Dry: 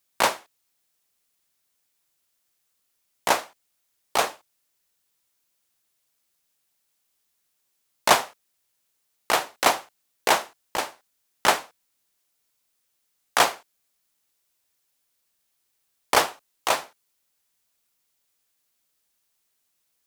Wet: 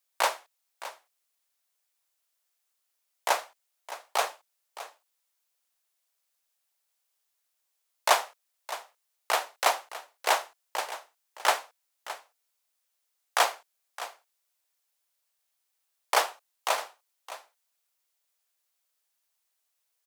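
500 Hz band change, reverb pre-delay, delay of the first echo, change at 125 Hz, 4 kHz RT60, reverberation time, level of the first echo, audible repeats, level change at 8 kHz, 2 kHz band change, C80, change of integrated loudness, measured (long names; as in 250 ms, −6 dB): −5.0 dB, no reverb audible, 615 ms, below −30 dB, no reverb audible, no reverb audible, −14.5 dB, 1, −5.0 dB, −4.5 dB, no reverb audible, −5.0 dB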